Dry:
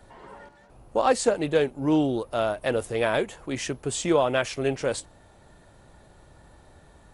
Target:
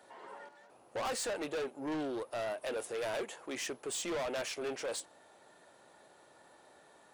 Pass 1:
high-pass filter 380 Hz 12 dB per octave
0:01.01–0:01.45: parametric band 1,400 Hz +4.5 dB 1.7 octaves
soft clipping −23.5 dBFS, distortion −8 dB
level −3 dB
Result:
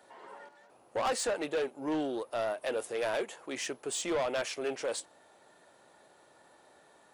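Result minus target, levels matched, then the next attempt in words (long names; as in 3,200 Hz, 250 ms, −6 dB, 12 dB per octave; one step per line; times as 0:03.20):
soft clipping: distortion −4 dB
high-pass filter 380 Hz 12 dB per octave
0:01.01–0:01.45: parametric band 1,400 Hz +4.5 dB 1.7 octaves
soft clipping −30.5 dBFS, distortion −4 dB
level −3 dB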